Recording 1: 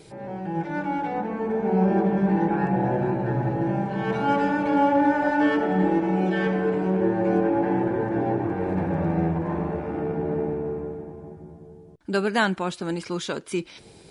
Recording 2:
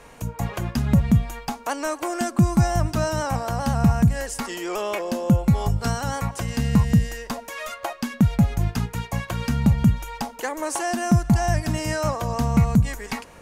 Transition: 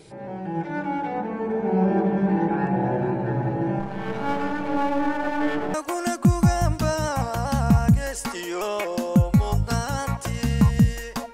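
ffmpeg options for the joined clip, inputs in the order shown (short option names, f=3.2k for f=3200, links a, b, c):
-filter_complex "[0:a]asettb=1/sr,asplit=3[a][b][c];[a]atrim=end=3.794[d];[b]atrim=start=3.79:end=5.74,asetpts=PTS-STARTPTS,afade=t=in:d=0.004:c=qsin,afade=t=out:st=1.946:d=0.004:c=qsin,aeval=exprs='if(lt(val(0),0),0.251*val(0),val(0))':c=same[e];[c]atrim=start=5.736[f];[d][e]acrossfade=d=0.004:c1=hsin:c2=qsin[g];[g][f]acrossfade=d=0.004:c1=qsin:c2=hsin,apad=whole_dur=11.33,atrim=end=11.33,atrim=end=5.742[h];[1:a]atrim=start=1.878:end=7.47[i];[h][i]acrossfade=d=0.004:c1=hsin:c2=hsin"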